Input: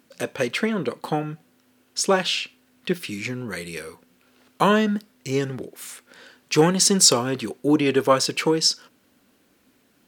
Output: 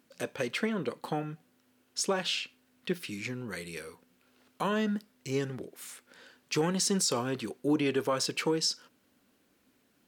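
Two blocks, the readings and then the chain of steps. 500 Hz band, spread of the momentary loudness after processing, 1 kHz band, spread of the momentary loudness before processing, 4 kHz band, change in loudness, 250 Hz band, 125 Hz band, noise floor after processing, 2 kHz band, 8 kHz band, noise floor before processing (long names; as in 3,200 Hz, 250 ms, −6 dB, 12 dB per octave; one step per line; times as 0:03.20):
−9.5 dB, 15 LU, −11.0 dB, 18 LU, −10.0 dB, −10.0 dB, −9.0 dB, −9.0 dB, −70 dBFS, −9.0 dB, −11.5 dB, −63 dBFS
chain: brickwall limiter −11.5 dBFS, peak gain reduction 9.5 dB
level −7.5 dB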